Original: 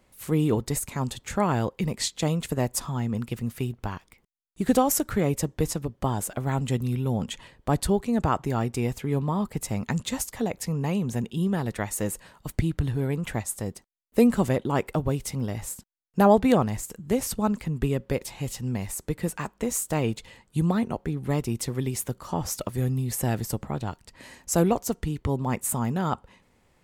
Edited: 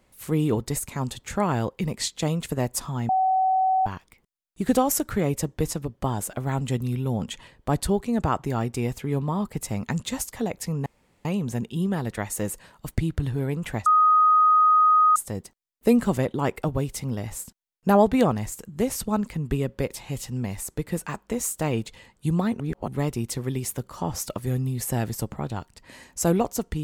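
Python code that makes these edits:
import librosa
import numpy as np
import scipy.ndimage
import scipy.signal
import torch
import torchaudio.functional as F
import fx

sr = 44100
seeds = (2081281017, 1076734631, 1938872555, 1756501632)

y = fx.edit(x, sr, fx.bleep(start_s=3.09, length_s=0.77, hz=756.0, db=-18.0),
    fx.insert_room_tone(at_s=10.86, length_s=0.39),
    fx.insert_tone(at_s=13.47, length_s=1.3, hz=1250.0, db=-14.0),
    fx.reverse_span(start_s=20.91, length_s=0.28), tone=tone)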